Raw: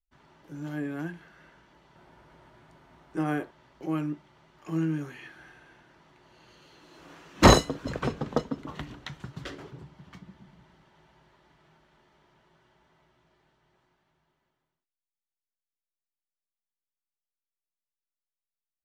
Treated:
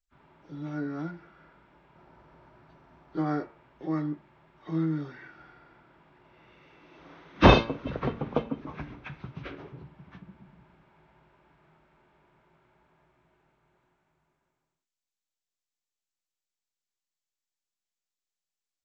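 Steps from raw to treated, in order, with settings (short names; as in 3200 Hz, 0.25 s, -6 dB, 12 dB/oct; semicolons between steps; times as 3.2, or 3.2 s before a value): nonlinear frequency compression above 1100 Hz 1.5:1; de-hum 114 Hz, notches 27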